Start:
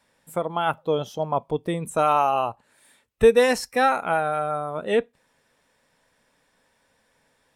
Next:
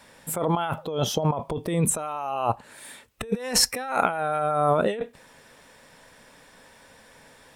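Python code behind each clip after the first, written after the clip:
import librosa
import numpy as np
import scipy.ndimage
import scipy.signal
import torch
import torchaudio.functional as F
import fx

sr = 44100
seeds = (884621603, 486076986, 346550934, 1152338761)

y = fx.over_compress(x, sr, threshold_db=-32.0, ratio=-1.0)
y = y * librosa.db_to_amplitude(5.5)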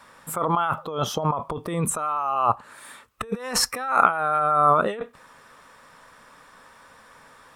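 y = fx.peak_eq(x, sr, hz=1200.0, db=14.5, octaves=0.59)
y = y * librosa.db_to_amplitude(-2.5)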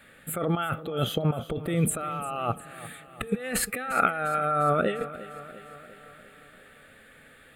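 y = fx.fixed_phaser(x, sr, hz=2400.0, stages=4)
y = fx.echo_feedback(y, sr, ms=350, feedback_pct=59, wet_db=-16.0)
y = y * librosa.db_to_amplitude(2.0)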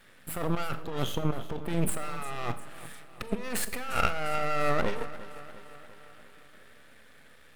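y = np.maximum(x, 0.0)
y = fx.rev_schroeder(y, sr, rt60_s=0.64, comb_ms=29, drr_db=13.0)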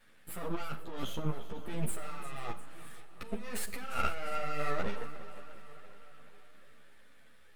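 y = fx.echo_feedback(x, sr, ms=492, feedback_pct=55, wet_db=-20.5)
y = fx.ensemble(y, sr)
y = y * librosa.db_to_amplitude(-4.0)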